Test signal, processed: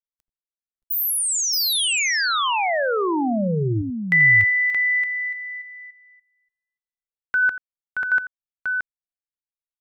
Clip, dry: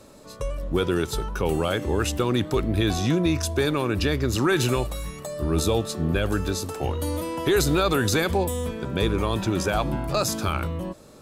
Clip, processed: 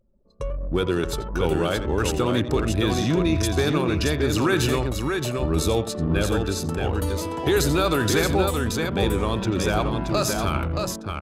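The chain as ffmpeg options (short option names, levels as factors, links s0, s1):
-af "aecho=1:1:86|625:0.251|0.596,anlmdn=10"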